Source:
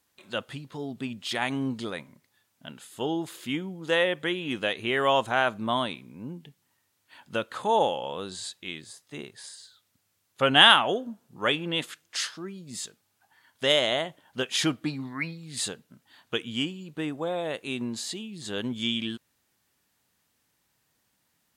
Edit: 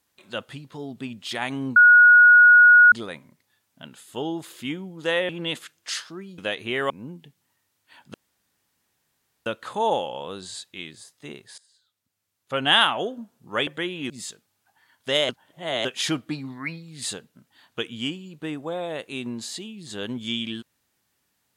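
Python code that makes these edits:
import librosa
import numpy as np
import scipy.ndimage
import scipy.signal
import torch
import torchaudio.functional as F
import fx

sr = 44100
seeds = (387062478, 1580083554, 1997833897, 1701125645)

y = fx.edit(x, sr, fx.insert_tone(at_s=1.76, length_s=1.16, hz=1450.0, db=-8.5),
    fx.swap(start_s=4.13, length_s=0.43, other_s=11.56, other_length_s=1.09),
    fx.cut(start_s=5.08, length_s=1.03),
    fx.insert_room_tone(at_s=7.35, length_s=1.32),
    fx.fade_in_from(start_s=9.47, length_s=1.59, floor_db=-19.5),
    fx.reverse_span(start_s=13.84, length_s=0.56), tone=tone)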